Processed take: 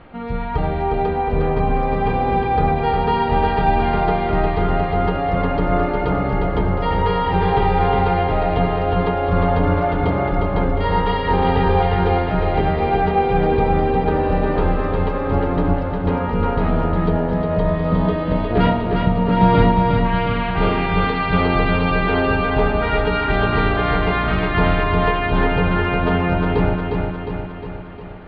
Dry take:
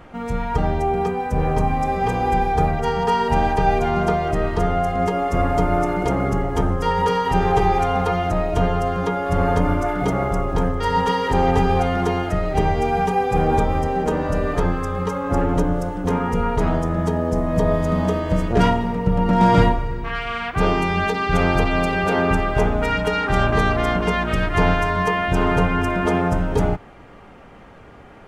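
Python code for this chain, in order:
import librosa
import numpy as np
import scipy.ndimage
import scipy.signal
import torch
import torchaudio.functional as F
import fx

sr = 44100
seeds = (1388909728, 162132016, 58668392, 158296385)

y = scipy.signal.sosfilt(scipy.signal.cheby1(5, 1.0, 4300.0, 'lowpass', fs=sr, output='sos'), x)
y = fx.echo_feedback(y, sr, ms=357, feedback_pct=59, wet_db=-4.0)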